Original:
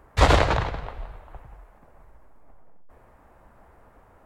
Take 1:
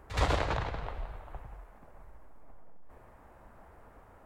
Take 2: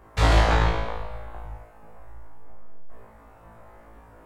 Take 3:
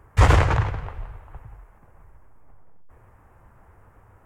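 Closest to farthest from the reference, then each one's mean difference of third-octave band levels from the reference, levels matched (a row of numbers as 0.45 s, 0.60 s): 3, 2, 1; 3.0 dB, 5.5 dB, 7.0 dB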